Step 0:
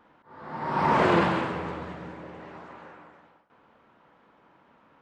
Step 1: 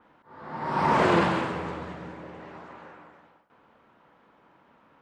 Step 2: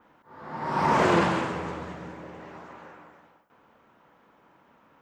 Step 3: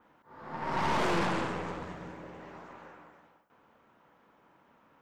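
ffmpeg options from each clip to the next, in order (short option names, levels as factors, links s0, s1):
-af "adynamicequalizer=threshold=0.00562:dfrequency=4900:dqfactor=0.7:tfrequency=4900:tqfactor=0.7:attack=5:release=100:ratio=0.375:range=2.5:mode=boostabove:tftype=highshelf"
-af "aexciter=amount=1.8:drive=4.2:freq=5600"
-af "aeval=exprs='(tanh(20*val(0)+0.7)-tanh(0.7))/20':c=same"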